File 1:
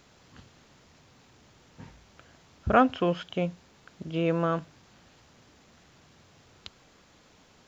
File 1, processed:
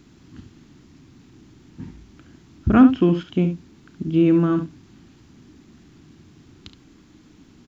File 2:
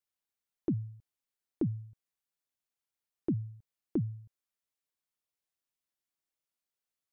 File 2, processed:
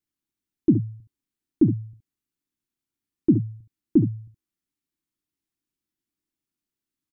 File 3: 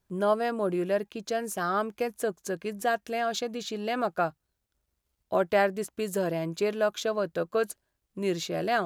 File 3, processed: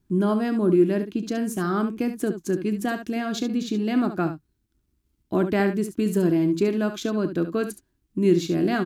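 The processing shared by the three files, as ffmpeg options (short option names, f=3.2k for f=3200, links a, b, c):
-af "lowshelf=f=410:t=q:w=3:g=9,aecho=1:1:33|70:0.158|0.316"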